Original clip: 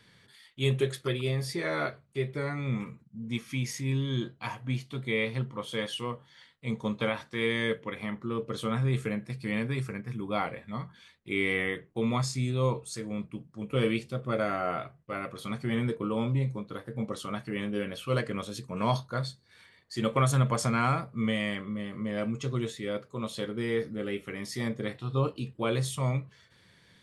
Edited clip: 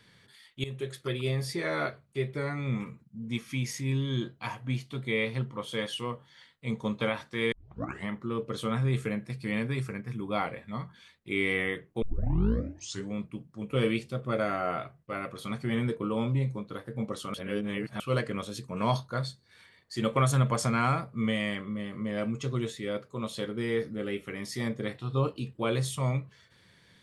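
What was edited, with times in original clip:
0:00.64–0:01.26: fade in, from −16.5 dB
0:07.52: tape start 0.56 s
0:12.02: tape start 1.11 s
0:17.34–0:18.00: reverse

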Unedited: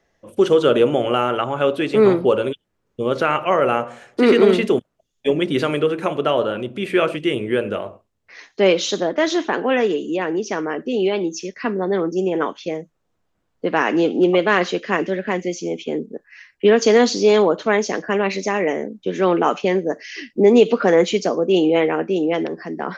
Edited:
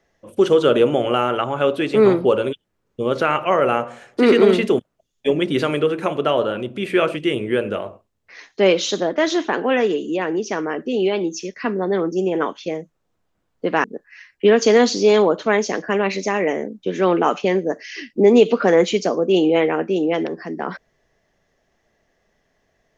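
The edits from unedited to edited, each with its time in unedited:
0:13.84–0:16.04: remove

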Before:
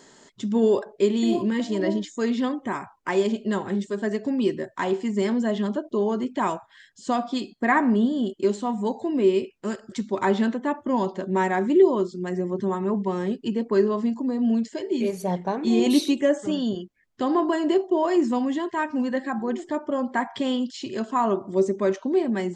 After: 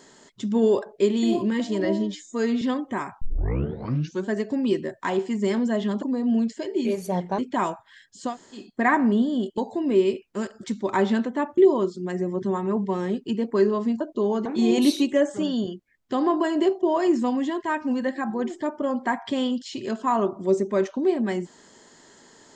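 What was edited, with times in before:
0:01.85–0:02.36: time-stretch 1.5×
0:02.96: tape start 1.07 s
0:05.77–0:06.22: swap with 0:14.18–0:15.54
0:07.13–0:07.43: fill with room tone, crossfade 0.16 s
0:08.41–0:08.86: remove
0:10.86–0:11.75: remove

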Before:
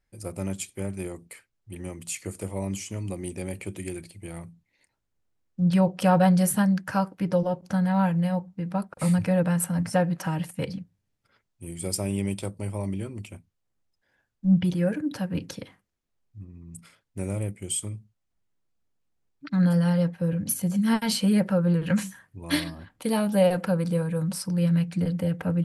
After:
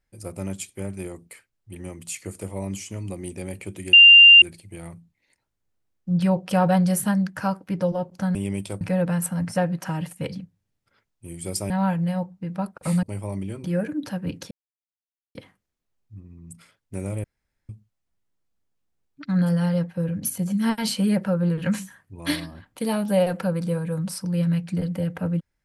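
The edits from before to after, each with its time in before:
0:03.93: insert tone 2,790 Hz −6 dBFS 0.49 s
0:07.86–0:09.19: swap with 0:12.08–0:12.54
0:13.15–0:14.72: remove
0:15.59: splice in silence 0.84 s
0:17.48–0:17.93: fill with room tone

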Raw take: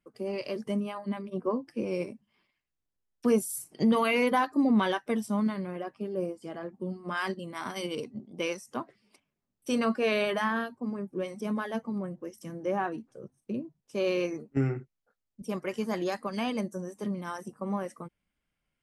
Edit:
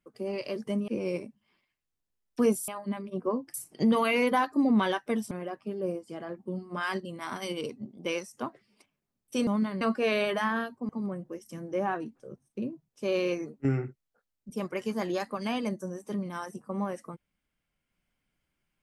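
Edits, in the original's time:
0:00.88–0:01.74: move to 0:03.54
0:05.31–0:05.65: move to 0:09.81
0:10.89–0:11.81: remove

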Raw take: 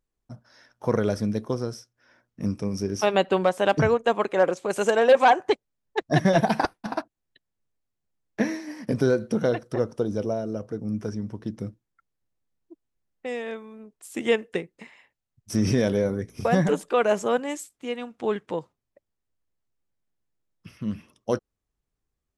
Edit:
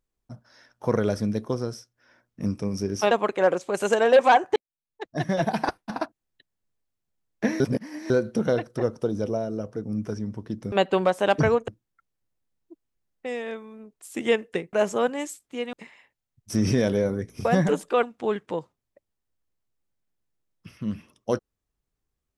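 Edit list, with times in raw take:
0:03.11–0:04.07: move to 0:11.68
0:05.52–0:06.94: fade in
0:08.56–0:09.06: reverse
0:17.03–0:18.03: move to 0:14.73

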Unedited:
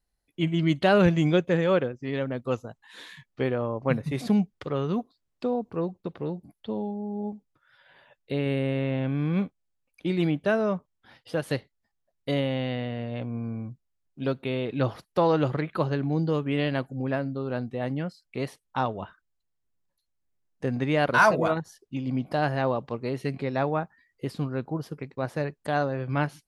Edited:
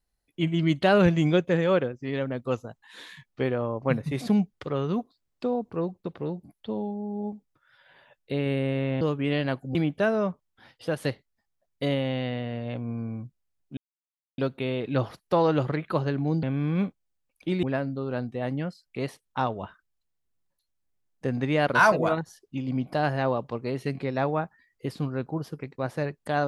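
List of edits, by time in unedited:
0:09.01–0:10.21: swap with 0:16.28–0:17.02
0:14.23: splice in silence 0.61 s

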